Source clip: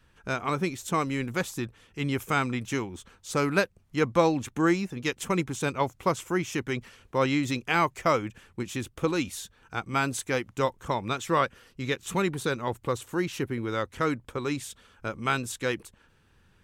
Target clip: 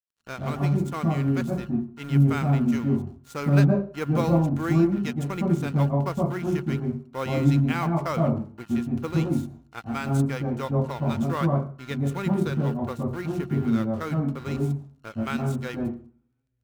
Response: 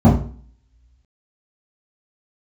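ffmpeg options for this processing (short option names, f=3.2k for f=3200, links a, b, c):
-filter_complex "[0:a]aeval=exprs='val(0)+0.0126*sin(2*PI*1400*n/s)':c=same,aeval=exprs='sgn(val(0))*max(abs(val(0))-0.0141,0)':c=same,acrusher=bits=6:mode=log:mix=0:aa=0.000001,asplit=2[a][b];[1:a]atrim=start_sample=2205,adelay=112[c];[b][c]afir=irnorm=-1:irlink=0,volume=-24dB[d];[a][d]amix=inputs=2:normalize=0,volume=-5dB"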